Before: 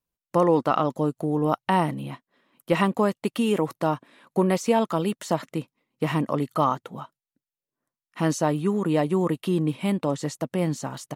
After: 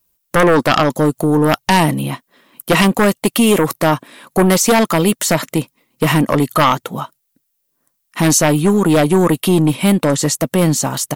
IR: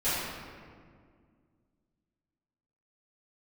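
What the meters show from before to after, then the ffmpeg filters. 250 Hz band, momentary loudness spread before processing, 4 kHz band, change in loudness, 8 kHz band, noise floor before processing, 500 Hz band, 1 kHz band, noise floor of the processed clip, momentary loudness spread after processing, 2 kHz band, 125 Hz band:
+10.5 dB, 10 LU, +16.5 dB, +10.5 dB, +20.5 dB, below −85 dBFS, +9.0 dB, +9.0 dB, −69 dBFS, 10 LU, +15.5 dB, +11.0 dB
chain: -af "aeval=exprs='0.398*sin(PI/2*2.51*val(0)/0.398)':channel_layout=same,aemphasis=mode=production:type=50kf,volume=1dB"

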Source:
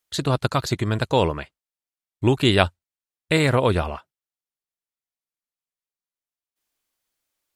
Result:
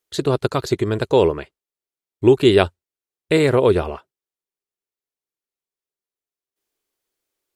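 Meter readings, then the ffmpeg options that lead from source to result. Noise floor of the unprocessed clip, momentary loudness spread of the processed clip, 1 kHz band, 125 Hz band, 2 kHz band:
below −85 dBFS, 9 LU, −0.5 dB, −1.0 dB, −1.5 dB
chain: -af "equalizer=frequency=400:width_type=o:width=0.67:gain=12,volume=-1.5dB"

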